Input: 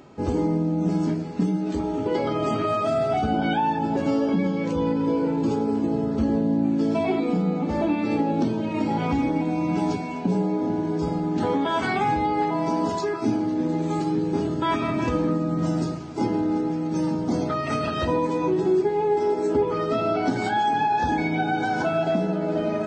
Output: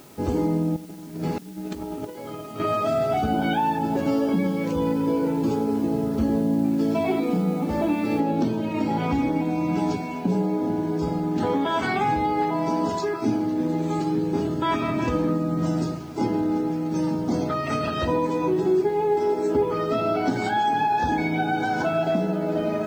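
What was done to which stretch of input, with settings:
0:00.76–0:02.60: compressor whose output falls as the input rises −31 dBFS, ratio −0.5
0:08.20: noise floor change −53 dB −61 dB

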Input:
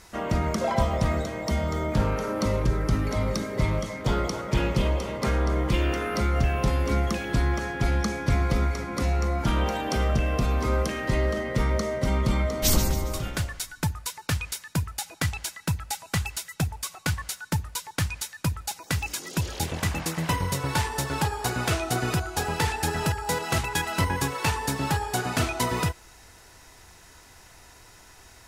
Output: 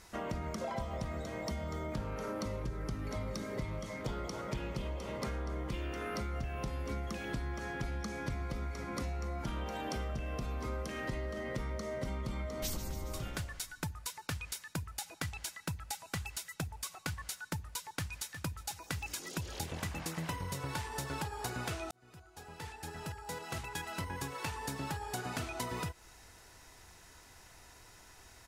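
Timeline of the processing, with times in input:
0:17.76–0:18.38: delay throw 360 ms, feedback 55%, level −17.5 dB
0:21.91–0:25.61: fade in
whole clip: downward compressor, threshold −29 dBFS; level −6 dB

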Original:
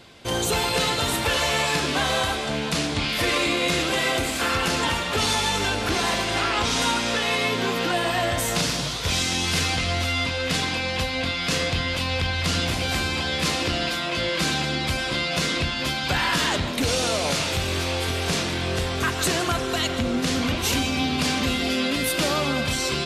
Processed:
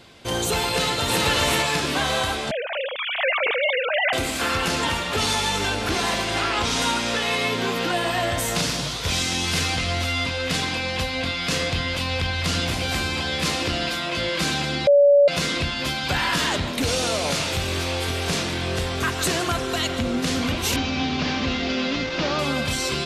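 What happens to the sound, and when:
0:00.70–0:01.23: delay throw 390 ms, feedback 25%, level −1 dB
0:02.51–0:04.13: three sine waves on the formant tracks
0:14.87–0:15.28: beep over 571 Hz −10.5 dBFS
0:20.76–0:22.39: variable-slope delta modulation 32 kbit/s

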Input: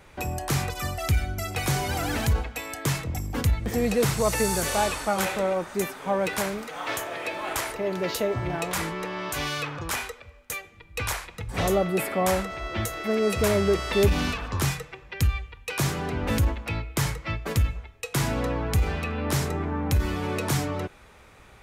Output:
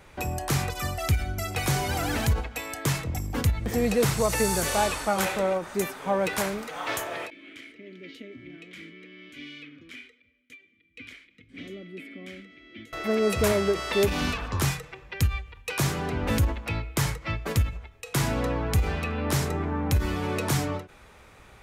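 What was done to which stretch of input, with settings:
0:07.30–0:12.93: formant filter i
0:13.52–0:14.22: low-shelf EQ 130 Hz −11 dB
whole clip: every ending faded ahead of time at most 180 dB per second

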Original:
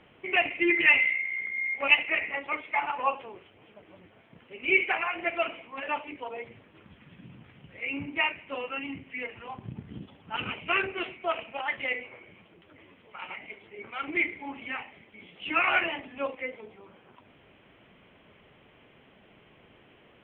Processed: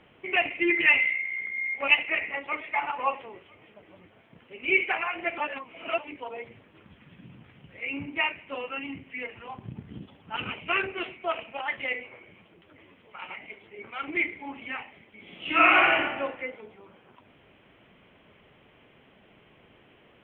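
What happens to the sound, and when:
0:01.97–0:02.70: delay throw 500 ms, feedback 35%, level −17 dB
0:05.38–0:05.98: reverse
0:15.21–0:16.04: thrown reverb, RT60 1.1 s, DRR −5.5 dB

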